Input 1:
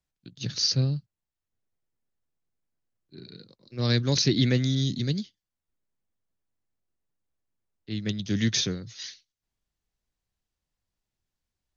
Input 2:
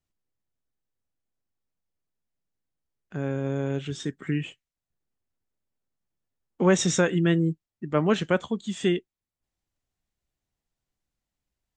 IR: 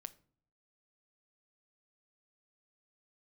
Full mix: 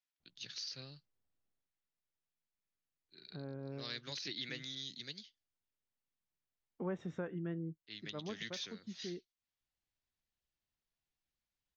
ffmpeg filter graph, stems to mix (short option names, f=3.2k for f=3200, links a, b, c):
-filter_complex "[0:a]deesser=0.65,bandpass=f=2.8k:t=q:w=0.72:csg=0,volume=-3.5dB,asplit=2[a][b];[1:a]lowpass=1.5k,adelay=200,volume=-1dB,afade=t=out:st=1.47:d=0.22:silence=0.316228[c];[b]apad=whole_len=527700[d];[c][d]sidechaincompress=threshold=-46dB:ratio=8:attack=20:release=169[e];[a][e]amix=inputs=2:normalize=0,acompressor=threshold=-50dB:ratio=1.5"